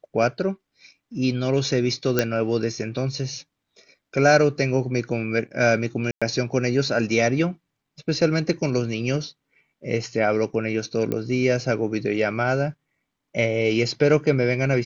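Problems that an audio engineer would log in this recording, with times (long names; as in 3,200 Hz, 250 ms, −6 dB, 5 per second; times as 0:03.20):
0:02.19: click −5 dBFS
0:06.11–0:06.22: drop-out 106 ms
0:11.12: click −13 dBFS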